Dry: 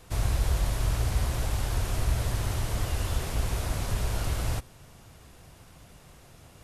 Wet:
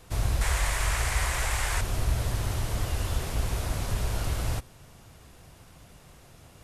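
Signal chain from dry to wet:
0:00.41–0:01.81: octave-band graphic EQ 125/250/1,000/2,000/8,000 Hz −6/−8/+5/+12/+9 dB

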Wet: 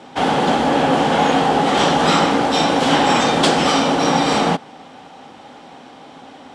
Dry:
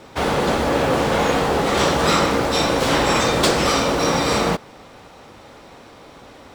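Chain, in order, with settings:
loudspeaker in its box 110–9,800 Hz, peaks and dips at 110 Hz −5 dB, 160 Hz +5 dB, 260 Hz +9 dB, 790 Hz +10 dB, 1,600 Hz +3 dB, 3,100 Hz +7 dB
level −1 dB

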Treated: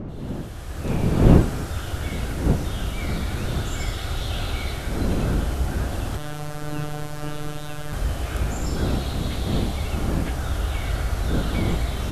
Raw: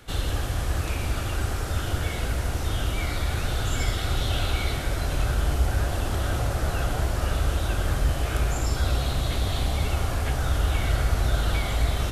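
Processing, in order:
fade in at the beginning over 1.26 s
wind on the microphone 240 Hz −24 dBFS
0:06.17–0:07.93: phases set to zero 149 Hz
level −2 dB

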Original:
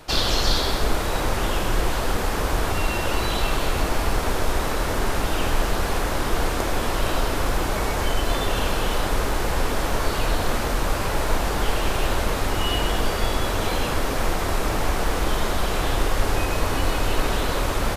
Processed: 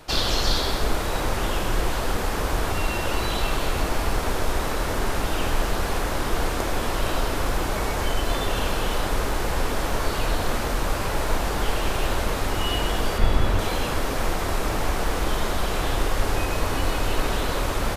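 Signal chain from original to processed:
0:13.18–0:13.59: bass and treble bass +7 dB, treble −6 dB
level −1.5 dB

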